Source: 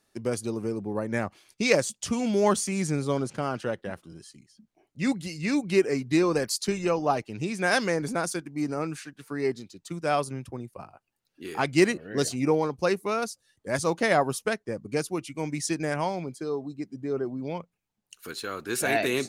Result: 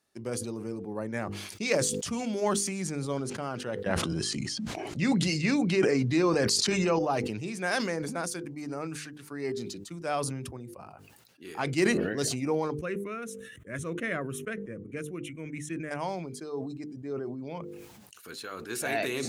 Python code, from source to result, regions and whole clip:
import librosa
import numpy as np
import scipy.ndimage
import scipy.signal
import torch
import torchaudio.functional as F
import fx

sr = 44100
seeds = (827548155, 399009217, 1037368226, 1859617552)

y = fx.chain(x, sr, fx.lowpass(hz=7300.0, slope=12),
    fx.env_flatten(amount_pct=70), at=(3.86, 6.99))
y = fx.chain(y, sr, fx.lowpass(hz=4000.0, slope=6),
    fx.fixed_phaser(hz=2000.0, stages=4), at=(12.79, 15.91))
y = scipy.signal.sosfilt(scipy.signal.butter(2, 52.0, 'highpass', fs=sr, output='sos'), y)
y = fx.hum_notches(y, sr, base_hz=50, count=10)
y = fx.sustainer(y, sr, db_per_s=36.0)
y = y * 10.0 ** (-5.5 / 20.0)